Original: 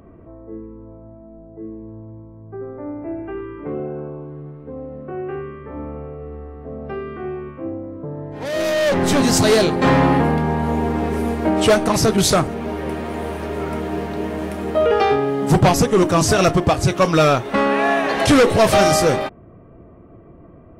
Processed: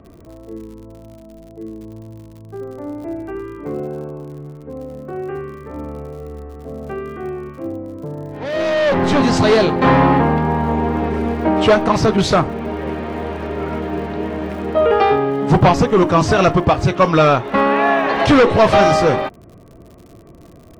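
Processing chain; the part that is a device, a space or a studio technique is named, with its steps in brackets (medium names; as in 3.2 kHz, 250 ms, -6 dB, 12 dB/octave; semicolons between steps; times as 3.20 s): lo-fi chain (low-pass 3.9 kHz 12 dB/octave; wow and flutter 14 cents; crackle 85 per s -37 dBFS); dynamic bell 1 kHz, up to +4 dB, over -29 dBFS, Q 2.3; trim +1.5 dB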